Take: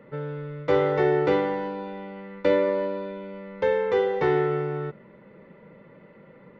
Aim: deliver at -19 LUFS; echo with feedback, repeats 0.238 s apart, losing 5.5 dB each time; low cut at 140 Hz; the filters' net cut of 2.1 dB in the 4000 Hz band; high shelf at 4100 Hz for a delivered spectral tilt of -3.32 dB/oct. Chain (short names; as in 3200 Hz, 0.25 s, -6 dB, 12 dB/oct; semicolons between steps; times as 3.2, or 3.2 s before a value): HPF 140 Hz; bell 4000 Hz -4.5 dB; high shelf 4100 Hz +3.5 dB; feedback echo 0.238 s, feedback 53%, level -5.5 dB; gain +6 dB